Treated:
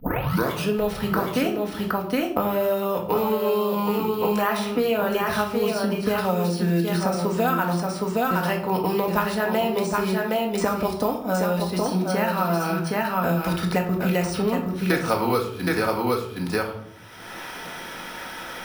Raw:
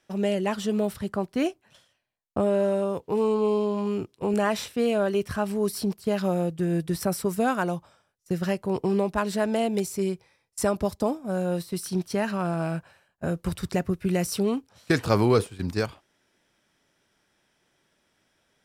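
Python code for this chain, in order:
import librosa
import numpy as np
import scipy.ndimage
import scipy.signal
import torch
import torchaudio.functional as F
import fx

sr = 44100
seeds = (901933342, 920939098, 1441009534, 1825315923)

p1 = fx.tape_start_head(x, sr, length_s=0.72)
p2 = scipy.signal.sosfilt(scipy.signal.butter(2, 7800.0, 'lowpass', fs=sr, output='sos'), p1)
p3 = fx.low_shelf(p2, sr, hz=340.0, db=-11.5)
p4 = fx.small_body(p3, sr, hz=(910.0, 1300.0), ring_ms=45, db=8)
p5 = p4 + fx.echo_single(p4, sr, ms=768, db=-5.0, dry=0)
p6 = np.repeat(scipy.signal.resample_poly(p5, 1, 3), 3)[:len(p5)]
p7 = fx.room_shoebox(p6, sr, seeds[0], volume_m3=500.0, walls='furnished', distance_m=1.9)
p8 = fx.band_squash(p7, sr, depth_pct=100)
y = F.gain(torch.from_numpy(p8), 3.0).numpy()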